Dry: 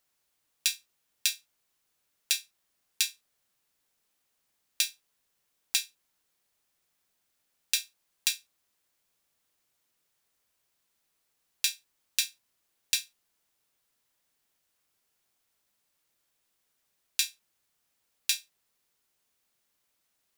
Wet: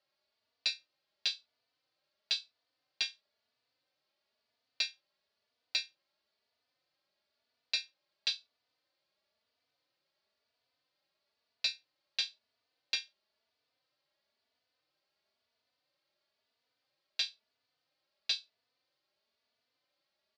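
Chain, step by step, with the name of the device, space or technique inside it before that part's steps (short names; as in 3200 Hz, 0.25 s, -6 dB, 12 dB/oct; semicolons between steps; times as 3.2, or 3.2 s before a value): barber-pole flanger into a guitar amplifier (endless flanger 3.3 ms +1 Hz; soft clip -20.5 dBFS, distortion -13 dB; speaker cabinet 99–4500 Hz, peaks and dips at 180 Hz -6 dB, 600 Hz +9 dB, 4500 Hz +9 dB)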